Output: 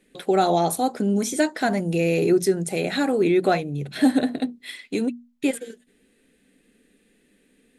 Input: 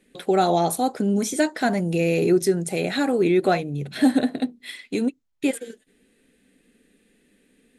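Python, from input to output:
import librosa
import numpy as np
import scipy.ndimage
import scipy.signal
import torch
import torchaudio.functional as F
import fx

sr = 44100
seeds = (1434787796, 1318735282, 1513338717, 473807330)

y = fx.hum_notches(x, sr, base_hz=60, count=4)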